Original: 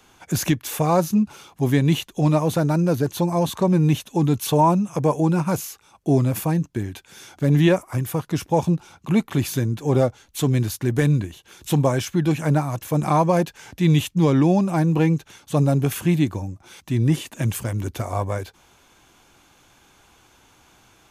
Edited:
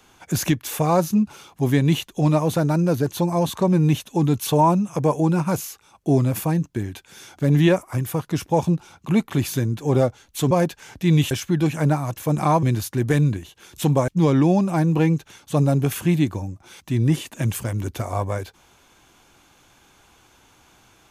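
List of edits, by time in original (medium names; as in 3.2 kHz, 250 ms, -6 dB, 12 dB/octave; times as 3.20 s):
10.51–11.96 s: swap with 13.28–14.08 s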